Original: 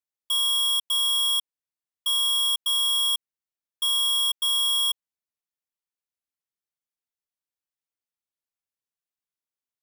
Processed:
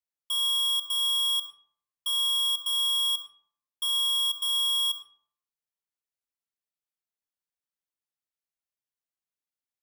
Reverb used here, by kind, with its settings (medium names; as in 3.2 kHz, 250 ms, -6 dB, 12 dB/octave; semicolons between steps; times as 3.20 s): algorithmic reverb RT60 0.62 s, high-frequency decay 0.55×, pre-delay 25 ms, DRR 9.5 dB; trim -4.5 dB